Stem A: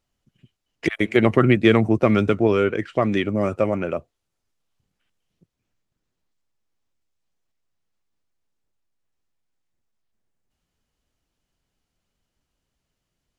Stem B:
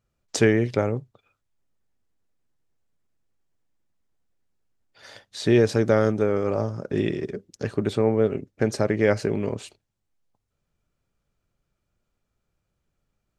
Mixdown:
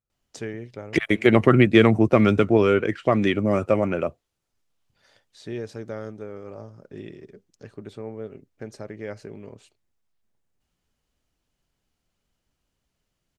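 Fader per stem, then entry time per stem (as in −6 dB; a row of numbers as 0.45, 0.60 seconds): +0.5, −14.5 decibels; 0.10, 0.00 seconds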